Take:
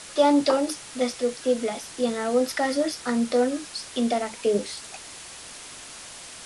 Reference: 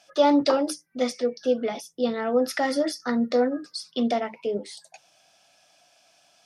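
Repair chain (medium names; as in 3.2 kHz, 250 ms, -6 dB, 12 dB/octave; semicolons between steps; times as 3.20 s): noise print and reduce 19 dB; trim 0 dB, from 4.37 s -5 dB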